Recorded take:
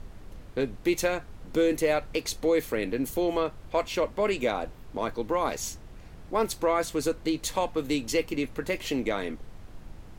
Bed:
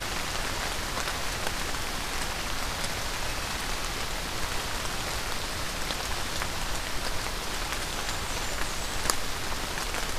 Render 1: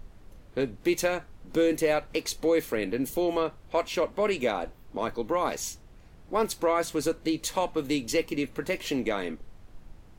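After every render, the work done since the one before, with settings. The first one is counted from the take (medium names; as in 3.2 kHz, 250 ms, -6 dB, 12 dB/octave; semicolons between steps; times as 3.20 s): noise print and reduce 6 dB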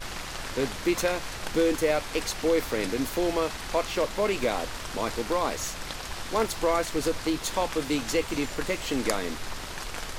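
add bed -5 dB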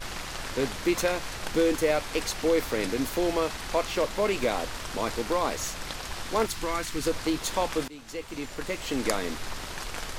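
6.46–7.07 s: peaking EQ 590 Hz -11 dB 1.1 oct; 7.88–9.12 s: fade in, from -21 dB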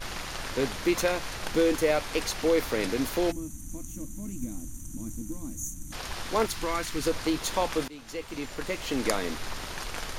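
band-stop 7.8 kHz, Q 13; 3.32–5.93 s: time-frequency box 340–5800 Hz -28 dB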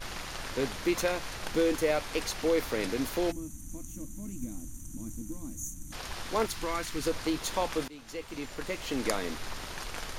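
trim -3 dB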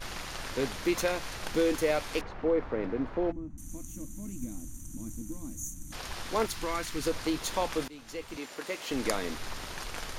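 2.21–3.58 s: low-pass 1.3 kHz; 8.37–8.91 s: high-pass 270 Hz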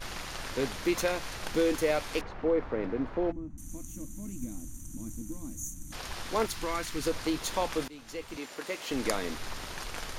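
no audible change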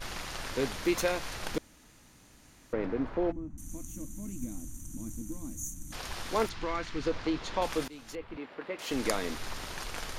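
1.58–2.73 s: room tone; 6.49–7.62 s: distance through air 150 m; 8.15–8.79 s: distance through air 420 m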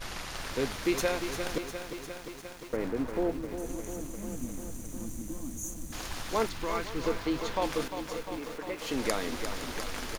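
delay 513 ms -16 dB; bit-crushed delay 351 ms, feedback 80%, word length 8-bit, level -8.5 dB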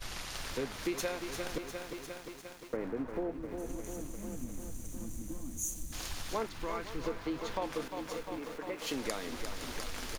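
compression 4:1, threshold -34 dBFS, peak gain reduction 10 dB; three bands expanded up and down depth 70%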